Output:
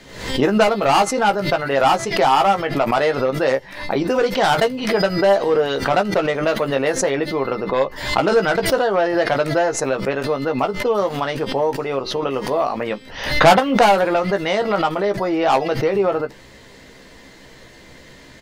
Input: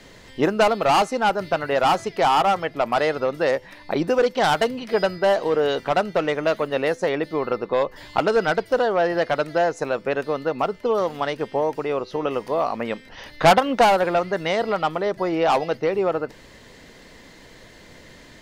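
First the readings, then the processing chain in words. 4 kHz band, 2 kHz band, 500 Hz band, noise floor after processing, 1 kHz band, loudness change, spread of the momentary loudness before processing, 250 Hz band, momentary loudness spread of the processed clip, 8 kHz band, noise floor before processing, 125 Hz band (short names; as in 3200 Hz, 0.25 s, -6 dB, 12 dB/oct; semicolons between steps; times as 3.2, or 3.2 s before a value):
+4.5 dB, +4.0 dB, +3.0 dB, -44 dBFS, +3.0 dB, +3.5 dB, 8 LU, +5.0 dB, 8 LU, n/a, -47 dBFS, +6.0 dB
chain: doubler 15 ms -6 dB; backwards sustainer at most 79 dB/s; gain +1.5 dB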